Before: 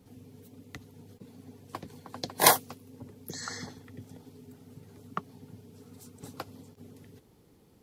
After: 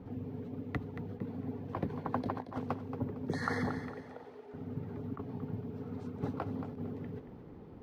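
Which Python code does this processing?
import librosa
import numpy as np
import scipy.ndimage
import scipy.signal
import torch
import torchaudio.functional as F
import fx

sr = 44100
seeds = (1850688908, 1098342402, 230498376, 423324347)

p1 = fx.highpass(x, sr, hz=450.0, slope=24, at=(3.87, 4.54))
p2 = (np.kron(scipy.signal.resample_poly(p1, 1, 3), np.eye(3)[0]) * 3)[:len(p1)]
p3 = scipy.signal.sosfilt(scipy.signal.butter(2, 1500.0, 'lowpass', fs=sr, output='sos'), p2)
p4 = fx.over_compress(p3, sr, threshold_db=-40.0, ratio=-0.5)
p5 = p4 + fx.echo_feedback(p4, sr, ms=228, feedback_pct=33, wet_db=-10.5, dry=0)
y = F.gain(torch.from_numpy(p5), 5.0).numpy()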